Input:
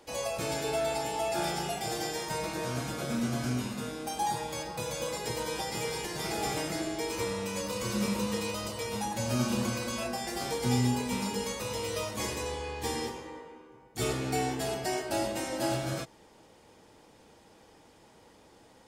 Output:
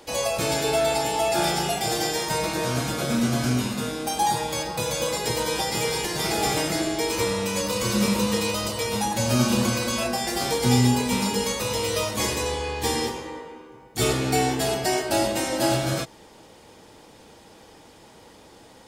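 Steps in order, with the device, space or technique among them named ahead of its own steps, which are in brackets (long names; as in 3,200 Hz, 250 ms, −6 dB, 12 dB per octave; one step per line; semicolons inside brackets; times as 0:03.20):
presence and air boost (parametric band 3,800 Hz +2.5 dB; high-shelf EQ 9,900 Hz +3.5 dB)
level +8 dB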